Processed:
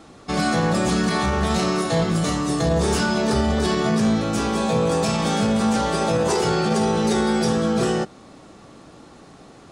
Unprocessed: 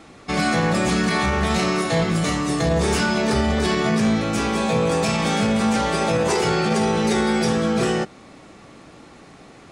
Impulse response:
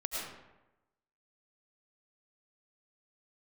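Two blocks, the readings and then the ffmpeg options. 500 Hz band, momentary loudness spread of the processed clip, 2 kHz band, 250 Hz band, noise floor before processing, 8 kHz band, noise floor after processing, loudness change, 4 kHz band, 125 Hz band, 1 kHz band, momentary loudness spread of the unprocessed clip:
0.0 dB, 2 LU, −3.5 dB, 0.0 dB, −46 dBFS, 0.0 dB, −46 dBFS, −0.5 dB, −1.0 dB, 0.0 dB, −0.5 dB, 2 LU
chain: -af "equalizer=frequency=2200:width=2.1:gain=-7"

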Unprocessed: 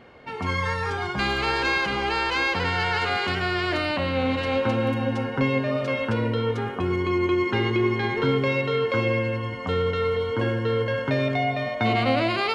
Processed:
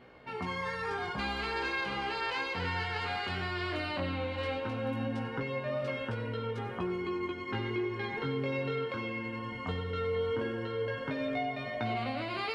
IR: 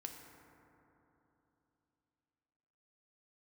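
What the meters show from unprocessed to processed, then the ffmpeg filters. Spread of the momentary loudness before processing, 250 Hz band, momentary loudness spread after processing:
4 LU, −11.0 dB, 3 LU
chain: -filter_complex "[0:a]equalizer=frequency=6500:width_type=o:width=0.36:gain=-4,acompressor=threshold=-25dB:ratio=6,flanger=delay=16:depth=7.3:speed=0.16,asplit=2[link_01][link_02];[1:a]atrim=start_sample=2205,adelay=93[link_03];[link_02][link_03]afir=irnorm=-1:irlink=0,volume=-10dB[link_04];[link_01][link_04]amix=inputs=2:normalize=0,volume=-3dB"

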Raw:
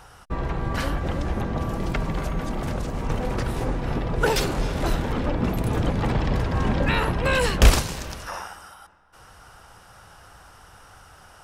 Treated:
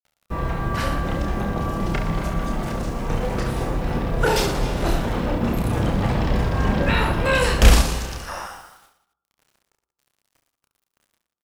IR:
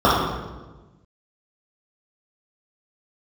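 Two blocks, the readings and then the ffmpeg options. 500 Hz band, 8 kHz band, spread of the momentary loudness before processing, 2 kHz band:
+2.5 dB, +2.0 dB, 10 LU, +2.5 dB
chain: -filter_complex "[0:a]agate=range=-33dB:threshold=-37dB:ratio=3:detection=peak,bandreject=frequency=135.8:width_type=h:width=4,bandreject=frequency=271.6:width_type=h:width=4,bandreject=frequency=407.4:width_type=h:width=4,acrusher=bits=8:mix=0:aa=0.000001,aecho=1:1:30|69|119.7|185.6|271.3:0.631|0.398|0.251|0.158|0.1,asplit=2[link_01][link_02];[1:a]atrim=start_sample=2205,afade=type=out:start_time=0.44:duration=0.01,atrim=end_sample=19845[link_03];[link_02][link_03]afir=irnorm=-1:irlink=0,volume=-43dB[link_04];[link_01][link_04]amix=inputs=2:normalize=0"

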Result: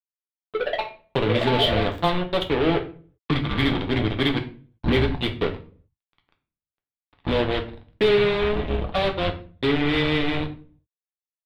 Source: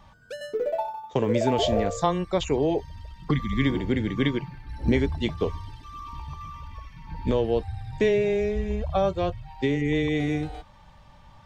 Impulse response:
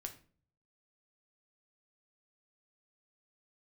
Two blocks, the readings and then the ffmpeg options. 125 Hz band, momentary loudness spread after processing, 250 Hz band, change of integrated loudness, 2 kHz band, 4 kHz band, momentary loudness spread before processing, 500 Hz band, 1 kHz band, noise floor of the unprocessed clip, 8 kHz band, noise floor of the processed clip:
+2.0 dB, 10 LU, +1.0 dB, +2.5 dB, +7.0 dB, +9.0 dB, 17 LU, +1.5 dB, +2.5 dB, −52 dBFS, can't be measured, below −85 dBFS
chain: -filter_complex "[0:a]acrusher=bits=3:mix=0:aa=0.5,highshelf=frequency=4800:width_type=q:width=3:gain=-10[link_01];[1:a]atrim=start_sample=2205,afade=type=out:start_time=0.45:duration=0.01,atrim=end_sample=20286[link_02];[link_01][link_02]afir=irnorm=-1:irlink=0,volume=4.5dB"

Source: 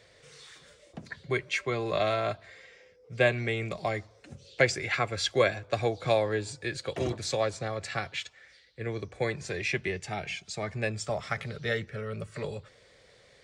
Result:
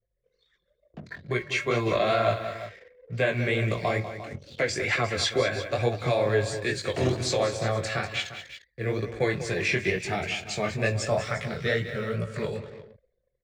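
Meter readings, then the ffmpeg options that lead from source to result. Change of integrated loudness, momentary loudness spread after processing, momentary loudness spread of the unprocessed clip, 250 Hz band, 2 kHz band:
+3.5 dB, 11 LU, 18 LU, +5.0 dB, +3.0 dB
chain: -filter_complex "[0:a]acrusher=bits=10:mix=0:aa=0.000001,alimiter=limit=-20dB:level=0:latency=1:release=152,flanger=delay=16.5:depth=7.8:speed=2.2,highshelf=frequency=3800:gain=-2.5,bandreject=frequency=800:width=16,bandreject=frequency=273.1:width_type=h:width=4,bandreject=frequency=546.2:width_type=h:width=4,bandreject=frequency=819.3:width_type=h:width=4,bandreject=frequency=1092.4:width_type=h:width=4,bandreject=frequency=1365.5:width_type=h:width=4,bandreject=frequency=1638.6:width_type=h:width=4,bandreject=frequency=1911.7:width_type=h:width=4,bandreject=frequency=2184.8:width_type=h:width=4,bandreject=frequency=2457.9:width_type=h:width=4,bandreject=frequency=2731:width_type=h:width=4,bandreject=frequency=3004.1:width_type=h:width=4,bandreject=frequency=3277.2:width_type=h:width=4,bandreject=frequency=3550.3:width_type=h:width=4,bandreject=frequency=3823.4:width_type=h:width=4,bandreject=frequency=4096.5:width_type=h:width=4,asplit=2[link_01][link_02];[link_02]aecho=0:1:46|195|351:0.106|0.266|0.2[link_03];[link_01][link_03]amix=inputs=2:normalize=0,dynaudnorm=framelen=140:gausssize=17:maxgain=9dB,anlmdn=0.01"

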